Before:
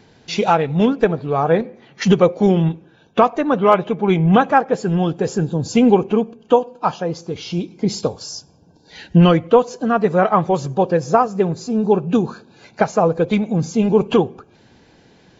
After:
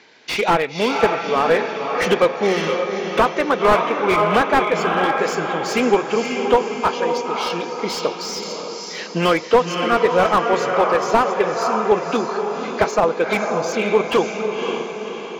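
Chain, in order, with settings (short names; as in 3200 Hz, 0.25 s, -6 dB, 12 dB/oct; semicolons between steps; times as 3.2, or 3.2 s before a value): speaker cabinet 500–6700 Hz, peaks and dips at 500 Hz -3 dB, 750 Hz -6 dB, 2200 Hz +7 dB; diffused feedback echo 0.547 s, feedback 52%, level -5.5 dB; slew limiter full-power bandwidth 160 Hz; gain +4.5 dB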